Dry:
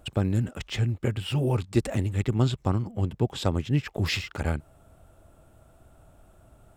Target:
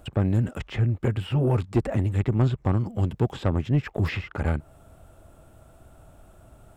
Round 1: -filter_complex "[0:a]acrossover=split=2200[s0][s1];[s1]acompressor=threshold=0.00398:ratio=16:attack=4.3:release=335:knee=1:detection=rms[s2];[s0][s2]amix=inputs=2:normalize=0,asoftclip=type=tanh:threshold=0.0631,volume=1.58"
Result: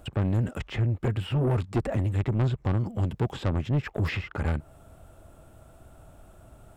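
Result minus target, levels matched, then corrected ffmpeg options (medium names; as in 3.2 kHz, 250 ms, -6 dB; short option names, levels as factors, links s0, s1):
saturation: distortion +7 dB
-filter_complex "[0:a]acrossover=split=2200[s0][s1];[s1]acompressor=threshold=0.00398:ratio=16:attack=4.3:release=335:knee=1:detection=rms[s2];[s0][s2]amix=inputs=2:normalize=0,asoftclip=type=tanh:threshold=0.133,volume=1.58"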